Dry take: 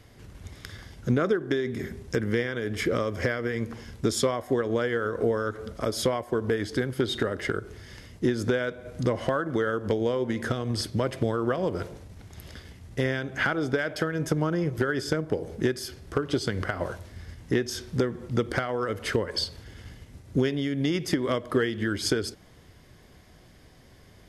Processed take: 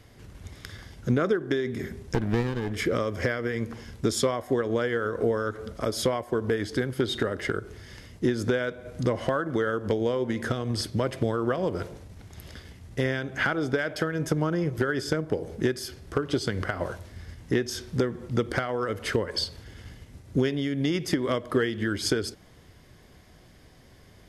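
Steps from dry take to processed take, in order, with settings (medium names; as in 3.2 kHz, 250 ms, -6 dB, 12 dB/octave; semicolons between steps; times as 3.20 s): 2.14–2.72 s: sliding maximum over 33 samples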